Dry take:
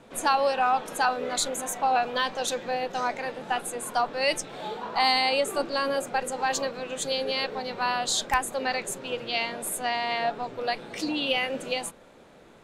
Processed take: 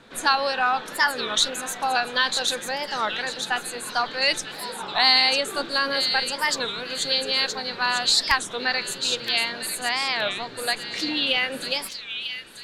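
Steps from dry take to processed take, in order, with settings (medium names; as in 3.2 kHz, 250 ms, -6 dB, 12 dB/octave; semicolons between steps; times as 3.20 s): fifteen-band graphic EQ 630 Hz -4 dB, 1.6 kHz +8 dB, 4 kHz +10 dB; feedback echo behind a high-pass 946 ms, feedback 35%, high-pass 2.9 kHz, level -5 dB; warped record 33 1/3 rpm, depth 250 cents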